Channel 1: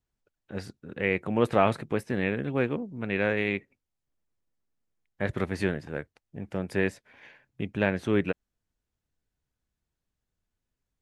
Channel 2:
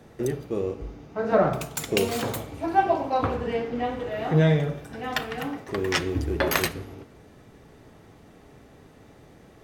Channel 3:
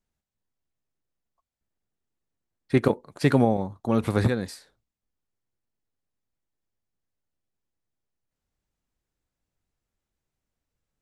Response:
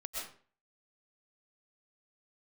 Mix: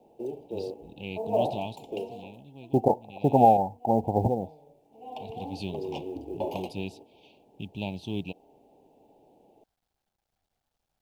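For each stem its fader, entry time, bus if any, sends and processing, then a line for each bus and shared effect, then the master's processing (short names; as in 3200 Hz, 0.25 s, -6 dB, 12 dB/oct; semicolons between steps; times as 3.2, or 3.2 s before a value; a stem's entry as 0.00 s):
1.52 s -5 dB -> 1.93 s -16 dB -> 5.13 s -16 dB -> 5.59 s -4 dB, 0.00 s, no send, graphic EQ 500/4000/8000 Hz -11/+9/-6 dB
-5.5 dB, 0.00 s, no send, three-band isolator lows -18 dB, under 240 Hz, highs -23 dB, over 2400 Hz; auto duck -22 dB, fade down 0.85 s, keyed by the third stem
-4.5 dB, 0.00 s, no send, synth low-pass 770 Hz, resonance Q 4.9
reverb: off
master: elliptic band-stop 880–2700 Hz, stop band 40 dB; bell 780 Hz +3.5 dB 0.87 oct; companded quantiser 8-bit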